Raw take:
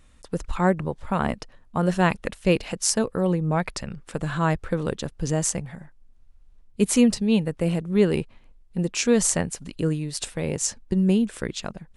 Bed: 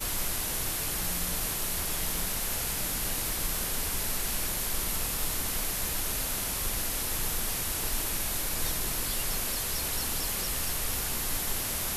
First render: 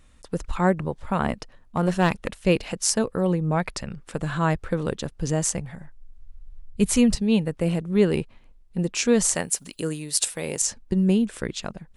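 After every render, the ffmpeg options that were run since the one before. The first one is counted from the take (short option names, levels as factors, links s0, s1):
-filter_complex "[0:a]asettb=1/sr,asplit=3[s0][s1][s2];[s0]atrim=end=1.774[s3];[s1]atrim=start=1.77:end=2.32,asetpts=PTS-STARTPTS,afade=t=in:d=0.004:c=qsin,afade=t=out:st=0.546:d=0.004:c=qsin,aeval=exprs='clip(val(0),-1,0.0841)':c=same[s4];[s2]atrim=start=2.316[s5];[s3][s4]acrossfade=d=0.004:c1=hsin:c2=qsin[s6];[s6][s5]acrossfade=d=0.004:c1=qsin:c2=hsin,asettb=1/sr,asplit=3[s7][s8][s9];[s7]atrim=end=5.464[s10];[s8]atrim=start=5.46:end=7.15,asetpts=PTS-STARTPTS,afade=t=in:d=0.004:c=qsin,afade=t=out:st=1.686:d=0.004:c=qsin,asubboost=boost=9:cutoff=130[s11];[s9]atrim=start=7.146[s12];[s10][s11]acrossfade=d=0.004:c1=hsin:c2=qsin[s13];[s13][s12]acrossfade=d=0.004:c1=qsin:c2=hsin,asettb=1/sr,asplit=3[s14][s15][s16];[s14]atrim=end=9.354[s17];[s15]atrim=start=9.35:end=10.62,asetpts=PTS-STARTPTS,afade=t=in:d=0.004:c=qsin,afade=t=out:st=1.266:d=0.004:c=qsin,aemphasis=mode=production:type=bsi[s18];[s16]atrim=start=10.616[s19];[s17][s18]acrossfade=d=0.004:c1=hsin:c2=qsin[s20];[s20][s19]acrossfade=d=0.004:c1=qsin:c2=hsin"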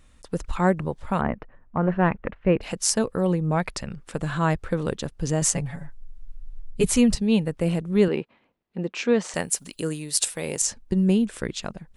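-filter_complex "[0:a]asplit=3[s0][s1][s2];[s0]afade=t=out:st=1.2:d=0.02[s3];[s1]lowpass=f=2100:w=0.5412,lowpass=f=2100:w=1.3066,afade=t=in:st=1.2:d=0.02,afade=t=out:st=2.61:d=0.02[s4];[s2]afade=t=in:st=2.61:d=0.02[s5];[s3][s4][s5]amix=inputs=3:normalize=0,asettb=1/sr,asplit=3[s6][s7][s8];[s6]atrim=end=5.414[s9];[s7]atrim=start=5.41:end=6.89,asetpts=PTS-STARTPTS,afade=t=in:d=0.004:c=qsin,afade=t=out:st=1.476:d=0.004:c=qsin,aecho=1:1:7.1:0.99,atrim=end_sample=65268[s10];[s8]atrim=start=6.886[s11];[s9][s10]acrossfade=d=0.004:c1=hsin:c2=qsin[s12];[s12][s11]acrossfade=d=0.004:c1=qsin:c2=hsin,asettb=1/sr,asplit=3[s13][s14][s15];[s13]atrim=end=8.084[s16];[s14]atrim=start=8.08:end=9.34,asetpts=PTS-STARTPTS,afade=t=in:d=0.004:c=qsin,afade=t=out:st=1.256:d=0.004:c=qsin,highpass=220,lowpass=3100[s17];[s15]atrim=start=9.336[s18];[s16][s17]acrossfade=d=0.004:c1=hsin:c2=qsin[s19];[s19][s18]acrossfade=d=0.004:c1=qsin:c2=hsin"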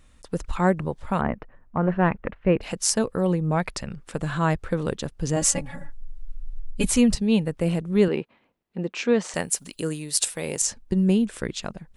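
-filter_complex "[0:a]asettb=1/sr,asplit=3[s0][s1][s2];[s0]atrim=end=5.364[s3];[s1]atrim=start=5.36:end=6.91,asetpts=PTS-STARTPTS,afade=t=in:d=0.004:c=qsin,afade=t=out:st=1.546:d=0.004:c=qsin,aecho=1:1:3.6:0.72,atrim=end_sample=68355[s4];[s2]atrim=start=6.906[s5];[s3][s4]acrossfade=d=0.004:c1=hsin:c2=qsin[s6];[s6][s5]acrossfade=d=0.004:c1=qsin:c2=hsin"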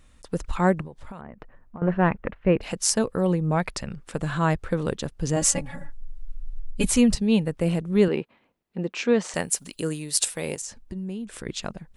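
-filter_complex "[0:a]asettb=1/sr,asplit=3[s0][s1][s2];[s0]atrim=end=0.814[s3];[s1]atrim=start=0.81:end=1.82,asetpts=PTS-STARTPTS,afade=t=in:d=0.004:c=qsin,afade=t=out:st=1.006:d=0.004:c=qsin,acompressor=threshold=0.02:ratio=20:attack=3.2:release=140:knee=1:detection=peak[s4];[s2]atrim=start=1.816[s5];[s3][s4]acrossfade=d=0.004:c1=hsin:c2=qsin[s6];[s6][s5]acrossfade=d=0.004:c1=qsin:c2=hsin,asettb=1/sr,asplit=3[s7][s8][s9];[s7]atrim=end=10.544[s10];[s8]atrim=start=10.54:end=11.47,asetpts=PTS-STARTPTS,afade=t=in:d=0.004:c=qsin,afade=t=out:st=0.926:d=0.004:c=qsin,acompressor=threshold=0.02:ratio=3:attack=3.2:release=140:knee=1:detection=peak[s11];[s9]atrim=start=11.466[s12];[s10][s11]acrossfade=d=0.004:c1=hsin:c2=qsin[s13];[s13][s12]acrossfade=d=0.004:c1=qsin:c2=hsin"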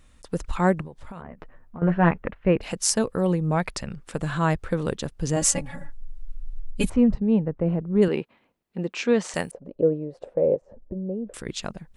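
-filter_complex "[0:a]asettb=1/sr,asplit=3[s0][s1][s2];[s0]atrim=end=1.154[s3];[s1]atrim=start=1.15:end=2.22,asetpts=PTS-STARTPTS,afade=t=in:d=0.004:c=qsin,afade=t=out:st=1.066:d=0.004:c=qsin,asplit=2[s4][s5];[s5]adelay=12,volume=0.531[s6];[s4][s6]amix=inputs=2:normalize=0,atrim=end_sample=47187[s7];[s2]atrim=start=2.216[s8];[s3][s7]acrossfade=d=0.004:c1=hsin:c2=qsin[s9];[s9][s8]acrossfade=d=0.004:c1=qsin:c2=hsin,asplit=3[s10][s11][s12];[s10]afade=t=out:st=6.88:d=0.02[s13];[s11]lowpass=1100,afade=t=in:st=6.88:d=0.02,afade=t=out:st=8.01:d=0.02[s14];[s12]afade=t=in:st=8.01:d=0.02[s15];[s13][s14][s15]amix=inputs=3:normalize=0,asettb=1/sr,asplit=3[s16][s17][s18];[s16]atrim=end=9.514[s19];[s17]atrim=start=9.51:end=11.34,asetpts=PTS-STARTPTS,afade=t=in:d=0.004:c=qsin,afade=t=out:st=1.826:d=0.004:c=qsin,lowpass=f=550:t=q:w=6.1[s20];[s18]atrim=start=11.336[s21];[s19][s20]acrossfade=d=0.004:c1=hsin:c2=qsin[s22];[s22][s21]acrossfade=d=0.004:c1=qsin:c2=hsin"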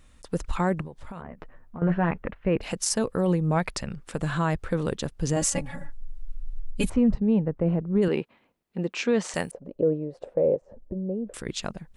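-af "alimiter=limit=0.2:level=0:latency=1:release=26"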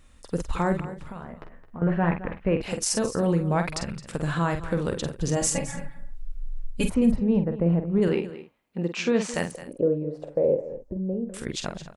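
-filter_complex "[0:a]asplit=2[s0][s1];[s1]adelay=47,volume=0.422[s2];[s0][s2]amix=inputs=2:normalize=0,aecho=1:1:216:0.188"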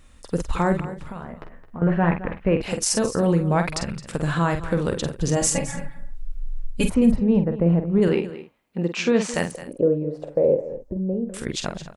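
-af "volume=1.5"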